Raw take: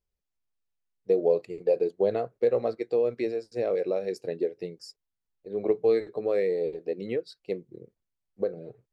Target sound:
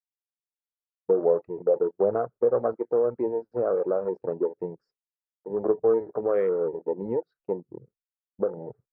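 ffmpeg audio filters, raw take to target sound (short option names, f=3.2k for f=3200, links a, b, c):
-filter_complex "[0:a]afwtdn=0.0126,asplit=2[a][b];[b]acompressor=threshold=-33dB:ratio=6,volume=-1dB[c];[a][c]amix=inputs=2:normalize=0,agate=range=-33dB:threshold=-52dB:ratio=3:detection=peak,lowpass=f=1.3k:t=q:w=3,volume=-1.5dB"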